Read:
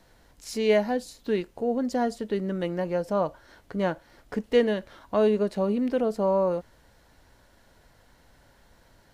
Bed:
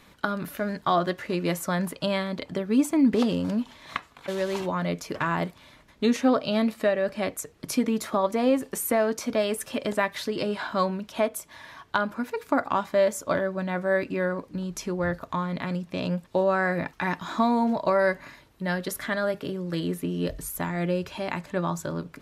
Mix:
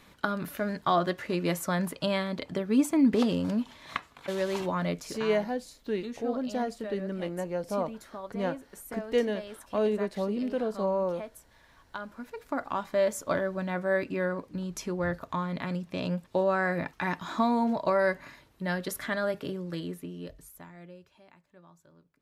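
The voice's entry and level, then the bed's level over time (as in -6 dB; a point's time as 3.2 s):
4.60 s, -5.0 dB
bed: 4.89 s -2 dB
5.39 s -16.5 dB
11.67 s -16.5 dB
13.12 s -3 dB
19.52 s -3 dB
21.38 s -28.5 dB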